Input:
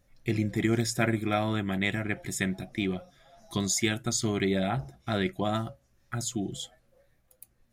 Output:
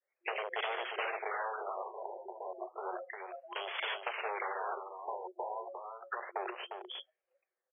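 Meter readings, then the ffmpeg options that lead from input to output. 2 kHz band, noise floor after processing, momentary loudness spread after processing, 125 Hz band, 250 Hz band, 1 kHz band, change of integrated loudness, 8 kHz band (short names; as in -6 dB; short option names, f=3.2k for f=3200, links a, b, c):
-5.5 dB, under -85 dBFS, 9 LU, under -40 dB, -27.5 dB, -0.5 dB, -10.0 dB, under -40 dB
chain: -filter_complex "[0:a]aemphasis=mode=production:type=75fm,aresample=16000,volume=22dB,asoftclip=hard,volume=-22dB,aresample=44100,adynamicequalizer=threshold=0.00794:dfrequency=700:dqfactor=1.7:tfrequency=700:tqfactor=1.7:attack=5:release=100:ratio=0.375:range=1.5:mode=cutabove:tftype=bell,afftdn=nr=28:nf=-40,aeval=exprs='0.0299*(abs(mod(val(0)/0.0299+3,4)-2)-1)':c=same,acrossover=split=470|3000[a][b][c];[a]acompressor=threshold=-52dB:ratio=6[d];[d][b][c]amix=inputs=3:normalize=0,afftfilt=real='re*between(b*sr/4096,350,4800)':imag='im*between(b*sr/4096,350,4800)':win_size=4096:overlap=0.75,acompressor=threshold=-46dB:ratio=12,asplit=2[e][f];[f]aecho=0:1:353:0.447[g];[e][g]amix=inputs=2:normalize=0,afftfilt=real='re*lt(b*sr/1024,990*pow(3500/990,0.5+0.5*sin(2*PI*0.32*pts/sr)))':imag='im*lt(b*sr/1024,990*pow(3500/990,0.5+0.5*sin(2*PI*0.32*pts/sr)))':win_size=1024:overlap=0.75,volume=13dB"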